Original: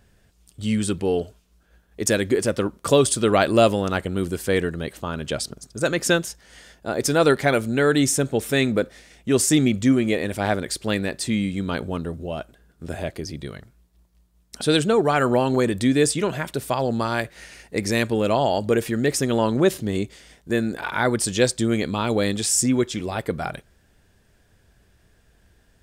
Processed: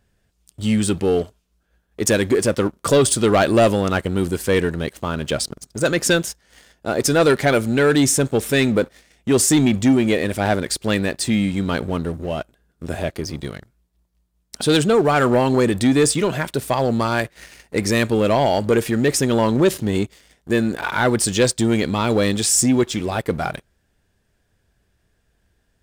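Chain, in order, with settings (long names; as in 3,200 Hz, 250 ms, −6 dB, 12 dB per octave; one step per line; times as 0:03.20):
leveller curve on the samples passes 2
level −3 dB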